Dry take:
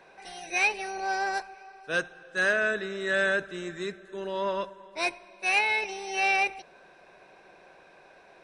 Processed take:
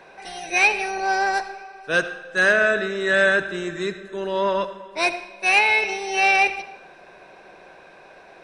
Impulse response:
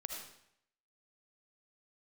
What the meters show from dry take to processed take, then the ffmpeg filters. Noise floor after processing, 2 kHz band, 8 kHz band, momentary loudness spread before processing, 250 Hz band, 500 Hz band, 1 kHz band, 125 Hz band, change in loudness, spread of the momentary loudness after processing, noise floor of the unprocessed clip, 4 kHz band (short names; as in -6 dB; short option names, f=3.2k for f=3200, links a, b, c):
-48 dBFS, +7.5 dB, +6.5 dB, 14 LU, +7.5 dB, +8.0 dB, +7.5 dB, +7.5 dB, +7.5 dB, 14 LU, -55 dBFS, +7.0 dB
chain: -filter_complex "[0:a]asplit=2[a][b];[1:a]atrim=start_sample=2205,highshelf=f=7.3k:g=-11[c];[b][c]afir=irnorm=-1:irlink=0,volume=-3.5dB[d];[a][d]amix=inputs=2:normalize=0,volume=4.5dB"